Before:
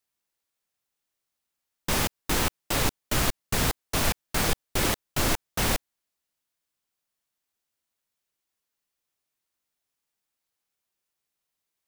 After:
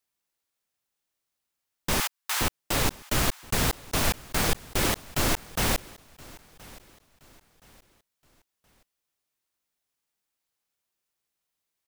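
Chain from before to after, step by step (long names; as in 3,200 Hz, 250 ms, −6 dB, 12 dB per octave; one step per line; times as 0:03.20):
0:02.00–0:02.41: high-pass filter 860 Hz 24 dB per octave
repeating echo 1,022 ms, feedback 36%, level −22 dB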